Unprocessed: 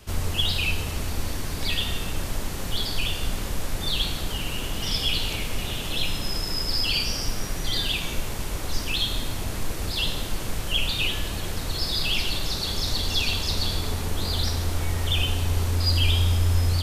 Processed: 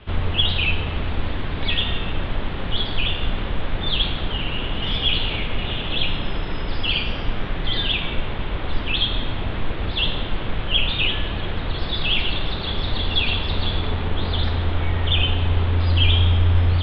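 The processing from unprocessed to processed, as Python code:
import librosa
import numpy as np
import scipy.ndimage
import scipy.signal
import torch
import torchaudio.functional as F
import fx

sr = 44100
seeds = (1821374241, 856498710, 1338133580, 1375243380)

y = scipy.signal.sosfilt(scipy.signal.ellip(4, 1.0, 50, 3500.0, 'lowpass', fs=sr, output='sos'), x)
y = y * 10.0 ** (5.5 / 20.0)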